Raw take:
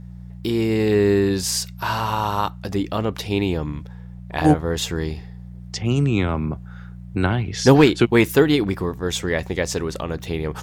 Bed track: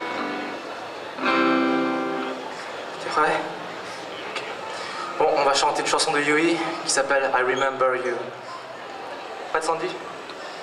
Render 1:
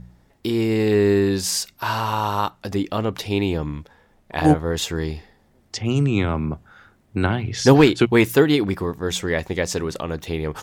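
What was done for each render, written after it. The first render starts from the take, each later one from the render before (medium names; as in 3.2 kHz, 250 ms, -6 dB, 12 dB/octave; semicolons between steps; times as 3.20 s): de-hum 60 Hz, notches 3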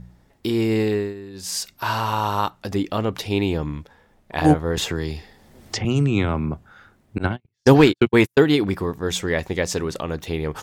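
0.78–1.69 s: dip -18.5 dB, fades 0.36 s; 4.77–5.85 s: three bands compressed up and down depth 70%; 7.18–8.47 s: gate -20 dBFS, range -50 dB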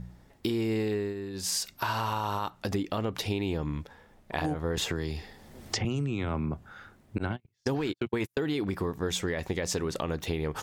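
peak limiter -13 dBFS, peak gain reduction 10.5 dB; compression, threshold -27 dBFS, peak gain reduction 10 dB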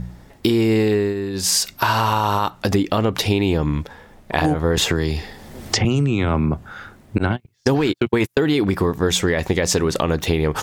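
trim +12 dB; peak limiter -3 dBFS, peak gain reduction 1 dB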